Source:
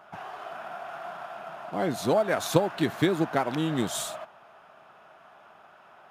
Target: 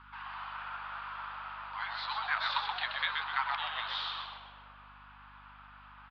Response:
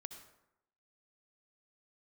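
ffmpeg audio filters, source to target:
-filter_complex "[0:a]asuperpass=centerf=2100:order=20:qfactor=0.55,asplit=7[a][b][c][d][e][f][g];[b]adelay=127,afreqshift=-100,volume=-4dB[h];[c]adelay=254,afreqshift=-200,volume=-10.9dB[i];[d]adelay=381,afreqshift=-300,volume=-17.9dB[j];[e]adelay=508,afreqshift=-400,volume=-24.8dB[k];[f]adelay=635,afreqshift=-500,volume=-31.7dB[l];[g]adelay=762,afreqshift=-600,volume=-38.7dB[m];[a][h][i][j][k][l][m]amix=inputs=7:normalize=0,aeval=exprs='val(0)+0.00112*(sin(2*PI*50*n/s)+sin(2*PI*2*50*n/s)/2+sin(2*PI*3*50*n/s)/3+sin(2*PI*4*50*n/s)/4+sin(2*PI*5*50*n/s)/5)':c=same"

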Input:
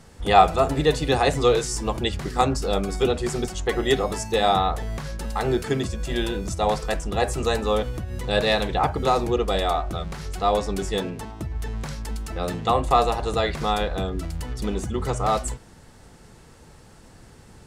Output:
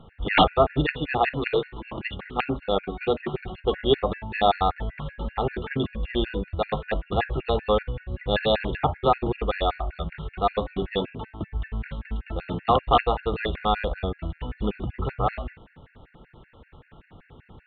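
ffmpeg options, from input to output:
-filter_complex "[0:a]asettb=1/sr,asplit=3[a][b][c];[a]atrim=end=0.904[d];[b]atrim=start=0.9:end=3.34,asetpts=PTS-STARTPTS,afade=t=in:d=0.004:c=qsin,afade=t=out:st=2.436:d=0.004:c=qsin,equalizer=f=64:t=o:w=1.8:g=-10.5[e];[c]atrim=start=3.336[f];[d][e]acrossfade=d=0.004:c1=hsin:c2=qsin[g];[g][f]acrossfade=d=0.004:c1=qsin:c2=hsin,aeval=exprs='(mod(2.37*val(0)+1,2)-1)/2.37':c=same,aresample=8000,aresample=44100,afftfilt=real='re*gt(sin(2*PI*5.2*pts/sr)*(1-2*mod(floor(b*sr/1024/1400),2)),0)':imag='im*gt(sin(2*PI*5.2*pts/sr)*(1-2*mod(floor(b*sr/1024/1400),2)),0)':win_size=1024:overlap=0.75,volume=1.5dB"

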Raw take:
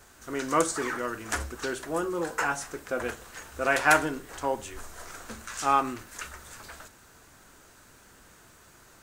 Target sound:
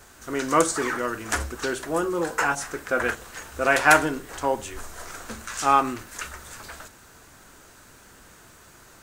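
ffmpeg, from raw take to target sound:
-filter_complex "[0:a]asettb=1/sr,asplit=3[a][b][c];[a]atrim=end=2.554[d];[b]atrim=start=2.55:end=3.15,asetpts=PTS-STARTPTS,afade=t=in:d=0.004:c=qsin,afade=t=out:st=0.596:d=0.004:c=qsin,adynamicequalizer=threshold=0.00447:dfrequency=1600:dqfactor=1.3:tfrequency=1600:tqfactor=1.3:attack=5:release=100:ratio=0.375:range=3.5:mode=boostabove:tftype=bell[e];[c]atrim=start=3.146[f];[d][e]acrossfade=d=0.004:c1=hsin:c2=qsin[g];[g][f]acrossfade=d=0.004:c1=qsin:c2=hsin,volume=4.5dB"

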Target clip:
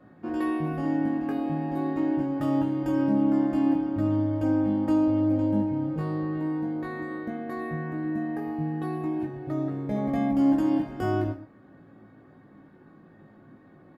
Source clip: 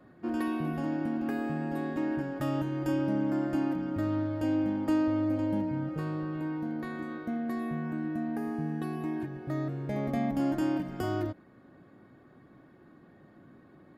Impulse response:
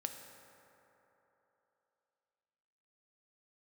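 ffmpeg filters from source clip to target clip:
-filter_complex "[0:a]highshelf=f=3.6k:g=-7.5,asplit=2[a][b];[b]adelay=19,volume=-4dB[c];[a][c]amix=inputs=2:normalize=0[d];[1:a]atrim=start_sample=2205,atrim=end_sample=6174[e];[d][e]afir=irnorm=-1:irlink=0,volume=3.5dB"

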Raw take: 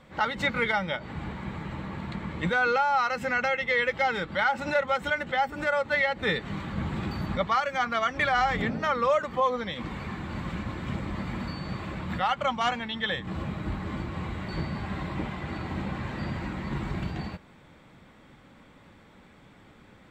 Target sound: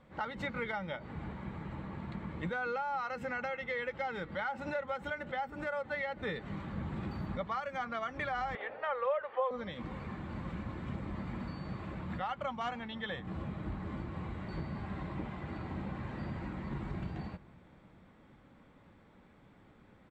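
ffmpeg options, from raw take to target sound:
-filter_complex "[0:a]highshelf=f=2.3k:g=-9.5,acompressor=threshold=-28dB:ratio=2.5,asettb=1/sr,asplit=3[a][b][c];[a]atrim=end=8.554[d];[b]atrim=start=8.55:end=9.51,asetpts=PTS-STARTPTS,afade=t=in:d=0.004:c=qsin,afade=t=out:st=0.956:d=0.004:c=qsin,highpass=f=480:w=0.5412,highpass=f=480:w=1.3066,equalizer=f=520:t=q:w=4:g=7,equalizer=f=850:t=q:w=4:g=4,equalizer=f=1.7k:t=q:w=4:g=4,equalizer=f=2.8k:t=q:w=4:g=4,lowpass=f=3.6k:w=0.5412,lowpass=f=3.6k:w=1.3066[e];[c]atrim=start=9.506[f];[d][e]acrossfade=d=0.004:c1=hsin:c2=qsin[g];[g][f]acrossfade=d=0.004:c1=qsin:c2=hsin,asplit=2[h][i];[i]adelay=510,lowpass=f=2k:p=1,volume=-22.5dB,asplit=2[j][k];[k]adelay=510,lowpass=f=2k:p=1,volume=0.5,asplit=2[l][m];[m]adelay=510,lowpass=f=2k:p=1,volume=0.5[n];[h][j][l][n]amix=inputs=4:normalize=0,volume=-6dB"

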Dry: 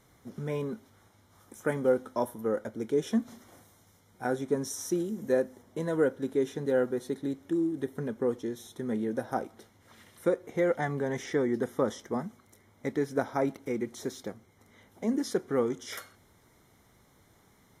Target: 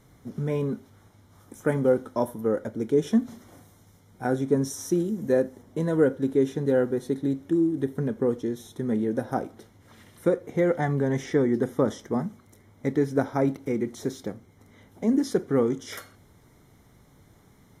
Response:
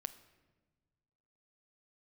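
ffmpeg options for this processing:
-filter_complex "[0:a]asplit=2[a][b];[1:a]atrim=start_sample=2205,atrim=end_sample=3969,lowshelf=f=430:g=10.5[c];[b][c]afir=irnorm=-1:irlink=0,volume=7.5dB[d];[a][d]amix=inputs=2:normalize=0,volume=-7.5dB"

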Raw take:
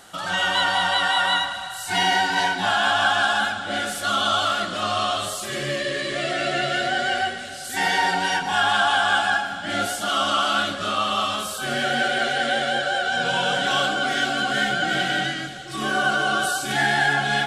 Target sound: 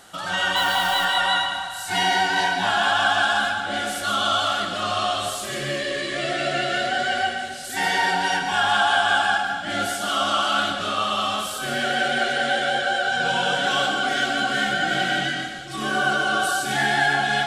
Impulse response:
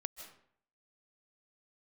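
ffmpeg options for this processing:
-filter_complex "[0:a]asettb=1/sr,asplit=3[a][b][c];[a]atrim=end=0.564[d];[b]atrim=start=0.56:end=1.05,asetpts=PTS-STARTPTS,afade=t=in:d=0.004:c=qsin,afade=t=out:st=0.486:d=0.004:c=qsin,acrusher=bits=6:dc=4:mix=0:aa=0.000001[e];[c]atrim=start=1.046[f];[d][e]acrossfade=d=0.004:c1=hsin:c2=qsin[g];[g][f]acrossfade=d=0.004:c1=qsin:c2=hsin[h];[1:a]atrim=start_sample=2205,asetrate=52920,aresample=44100[i];[h][i]afir=irnorm=-1:irlink=0,volume=3.5dB"

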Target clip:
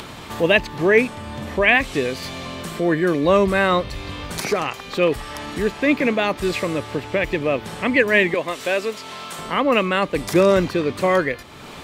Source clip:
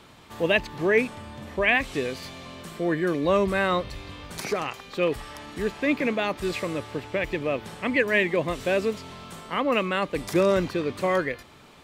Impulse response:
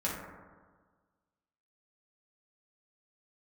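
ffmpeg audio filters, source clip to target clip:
-filter_complex "[0:a]asettb=1/sr,asplit=3[a][b][c];[a]atrim=end=8.344[d];[b]atrim=start=8.34:end=9.39,asetpts=PTS-STARTPTS,afade=t=in:d=0.004:c=qsin,afade=t=out:st=1.046:d=0.004:c=qsin,highpass=f=680:p=1[e];[c]atrim=start=9.386[f];[d][e]acrossfade=d=0.004:c1=hsin:c2=qsin[g];[g][f]acrossfade=d=0.004:c1=qsin:c2=hsin,asplit=2[h][i];[i]acompressor=mode=upward:threshold=-26dB:ratio=2.5,volume=0dB[j];[h][j]amix=inputs=2:normalize=0"

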